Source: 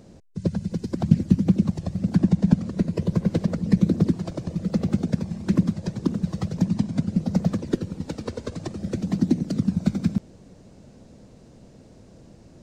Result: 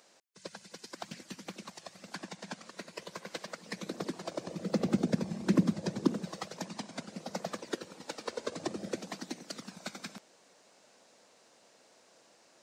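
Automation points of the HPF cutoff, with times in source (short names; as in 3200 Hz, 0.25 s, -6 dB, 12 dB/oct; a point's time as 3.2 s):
3.59 s 1100 Hz
4.97 s 260 Hz
6.03 s 260 Hz
6.44 s 700 Hz
8.24 s 700 Hz
8.73 s 290 Hz
9.19 s 920 Hz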